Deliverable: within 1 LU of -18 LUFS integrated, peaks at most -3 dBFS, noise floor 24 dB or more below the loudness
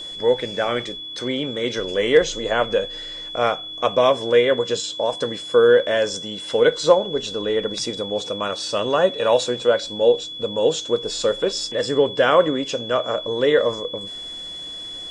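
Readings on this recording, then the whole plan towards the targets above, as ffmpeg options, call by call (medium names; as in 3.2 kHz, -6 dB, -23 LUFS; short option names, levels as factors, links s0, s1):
steady tone 3.4 kHz; tone level -31 dBFS; loudness -21.0 LUFS; peak level -2.5 dBFS; loudness target -18.0 LUFS
-> -af "bandreject=f=3400:w=30"
-af "volume=1.41,alimiter=limit=0.708:level=0:latency=1"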